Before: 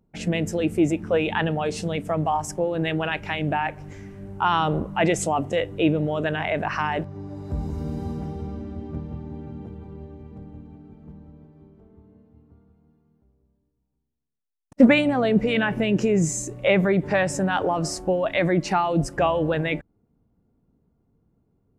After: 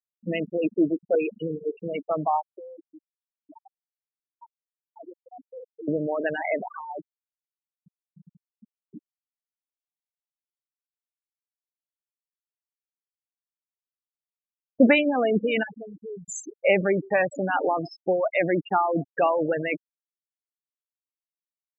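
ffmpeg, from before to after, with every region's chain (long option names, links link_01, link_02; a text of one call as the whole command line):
ffmpeg -i in.wav -filter_complex "[0:a]asettb=1/sr,asplit=3[link_01][link_02][link_03];[link_01]atrim=end=1.154[link_04];[link_02]atrim=start=1.15:end=1.73,asetpts=PTS-STARTPTS,afade=type=in:duration=0.004:curve=qsin,afade=type=out:start_time=0.576:duration=0.004:curve=qsin,asuperstop=centerf=1100:order=20:qfactor=0.66,equalizer=frequency=1700:width_type=o:width=0.98:gain=-6.5[link_05];[link_03]atrim=start=1.726[link_06];[link_04][link_05]acrossfade=duration=0.004:curve1=hsin:curve2=qsin[link_07];[link_07][link_06]acrossfade=duration=0.004:curve1=qsin:curve2=hsin,asettb=1/sr,asplit=3[link_08][link_09][link_10];[link_08]atrim=end=2.584[link_11];[link_09]atrim=start=2.58:end=5.88,asetpts=PTS-STARTPTS,afade=type=in:duration=0.004:curve=qsin,afade=type=out:start_time=3.296:duration=0.004:curve=qsin,equalizer=frequency=1000:width_type=o:width=1.9:gain=-8,bandreject=frequency=50:width_type=h:width=6,bandreject=frequency=100:width_type=h:width=6,bandreject=frequency=150:width_type=h:width=6,bandreject=frequency=200:width_type=h:width=6,bandreject=frequency=250:width_type=h:width=6,bandreject=frequency=300:width_type=h:width=6,acompressor=threshold=-34dB:ratio=5:attack=3.2:release=140:knee=1:detection=peak[link_12];[link_10]atrim=start=5.876[link_13];[link_11][link_12]acrossfade=duration=0.004:curve1=hsin:curve2=qsin[link_14];[link_14][link_13]acrossfade=duration=0.004:curve1=qsin:curve2=hsin,asettb=1/sr,asplit=3[link_15][link_16][link_17];[link_15]atrim=end=6.624[link_18];[link_16]atrim=start=6.62:end=8.92,asetpts=PTS-STARTPTS,afade=type=in:duration=0.004:curve=qsin,afade=type=out:start_time=2.296:duration=0.004:curve=qsin,lowpass=frequency=1800:poles=1,asubboost=boost=11:cutoff=140,acompressor=threshold=-27dB:ratio=6:attack=3.2:release=140:knee=1:detection=peak[link_19];[link_17]atrim=start=8.916[link_20];[link_18][link_19]acrossfade=duration=0.004:curve1=hsin:curve2=qsin[link_21];[link_21][link_20]acrossfade=duration=0.004:curve1=qsin:curve2=hsin,asettb=1/sr,asplit=3[link_22][link_23][link_24];[link_22]atrim=end=15.634[link_25];[link_23]atrim=start=15.63:end=16.29,asetpts=PTS-STARTPTS,afade=type=in:duration=0.004:curve=qsin,afade=type=out:start_time=0.656:duration=0.004:curve=qsin,lowpass=3900,acompressor=threshold=-22dB:ratio=16:attack=3.2:release=140:knee=1:detection=peak,volume=31dB,asoftclip=hard,volume=-31dB[link_26];[link_24]atrim=start=16.286[link_27];[link_25][link_26]acrossfade=duration=0.004:curve1=hsin:curve2=qsin[link_28];[link_28][link_27]acrossfade=duration=0.004:curve1=qsin:curve2=hsin,highpass=260,afftfilt=real='re*gte(hypot(re,im),0.112)':imag='im*gte(hypot(re,im),0.112)':win_size=1024:overlap=0.75" out.wav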